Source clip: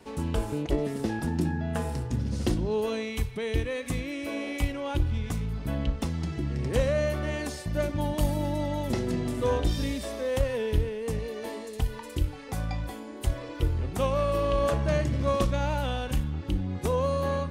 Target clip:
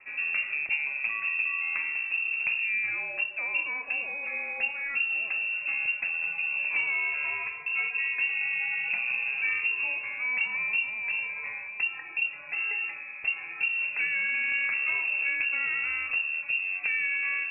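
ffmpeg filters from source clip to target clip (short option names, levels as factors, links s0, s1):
-filter_complex "[0:a]lowpass=f=2400:t=q:w=0.5098,lowpass=f=2400:t=q:w=0.6013,lowpass=f=2400:t=q:w=0.9,lowpass=f=2400:t=q:w=2.563,afreqshift=-2800,acrossover=split=480|1900[s0][s1][s2];[s0]acompressor=threshold=0.00178:ratio=4[s3];[s1]acompressor=threshold=0.0141:ratio=4[s4];[s2]acompressor=threshold=0.0447:ratio=4[s5];[s3][s4][s5]amix=inputs=3:normalize=0,bandreject=f=46.82:t=h:w=4,bandreject=f=93.64:t=h:w=4,bandreject=f=140.46:t=h:w=4,bandreject=f=187.28:t=h:w=4,bandreject=f=234.1:t=h:w=4,bandreject=f=280.92:t=h:w=4,bandreject=f=327.74:t=h:w=4,bandreject=f=374.56:t=h:w=4,bandreject=f=421.38:t=h:w=4,bandreject=f=468.2:t=h:w=4,bandreject=f=515.02:t=h:w=4,bandreject=f=561.84:t=h:w=4,bandreject=f=608.66:t=h:w=4,bandreject=f=655.48:t=h:w=4,bandreject=f=702.3:t=h:w=4,bandreject=f=749.12:t=h:w=4,bandreject=f=795.94:t=h:w=4,bandreject=f=842.76:t=h:w=4,bandreject=f=889.58:t=h:w=4,bandreject=f=936.4:t=h:w=4,bandreject=f=983.22:t=h:w=4,bandreject=f=1030.04:t=h:w=4,bandreject=f=1076.86:t=h:w=4,bandreject=f=1123.68:t=h:w=4,bandreject=f=1170.5:t=h:w=4,bandreject=f=1217.32:t=h:w=4,bandreject=f=1264.14:t=h:w=4,bandreject=f=1310.96:t=h:w=4,bandreject=f=1357.78:t=h:w=4,bandreject=f=1404.6:t=h:w=4,bandreject=f=1451.42:t=h:w=4,bandreject=f=1498.24:t=h:w=4,bandreject=f=1545.06:t=h:w=4,bandreject=f=1591.88:t=h:w=4,bandreject=f=1638.7:t=h:w=4,bandreject=f=1685.52:t=h:w=4,bandreject=f=1732.34:t=h:w=4,bandreject=f=1779.16:t=h:w=4"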